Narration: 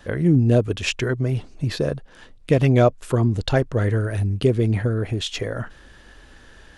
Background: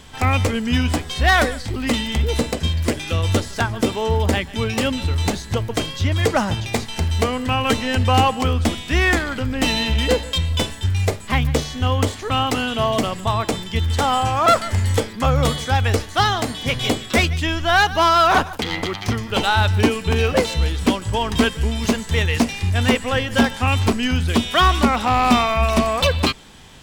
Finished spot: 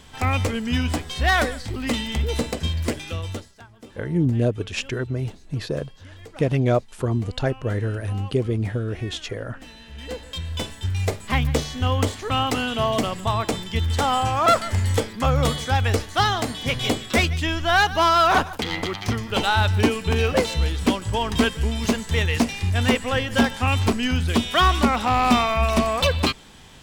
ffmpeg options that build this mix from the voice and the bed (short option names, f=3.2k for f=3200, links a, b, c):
-filter_complex "[0:a]adelay=3900,volume=-4dB[a];[1:a]volume=18.5dB,afade=t=out:st=2.86:d=0.68:silence=0.0891251,afade=t=in:st=9.87:d=1.42:silence=0.0749894[b];[a][b]amix=inputs=2:normalize=0"